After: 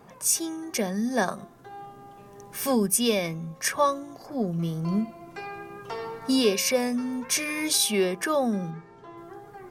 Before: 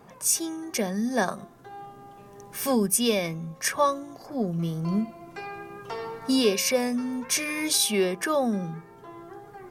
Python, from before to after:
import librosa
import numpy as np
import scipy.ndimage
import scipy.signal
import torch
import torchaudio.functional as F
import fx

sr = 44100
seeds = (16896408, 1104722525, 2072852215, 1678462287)

y = fx.cheby1_lowpass(x, sr, hz=5500.0, order=2, at=(8.7, 9.16), fade=0.02)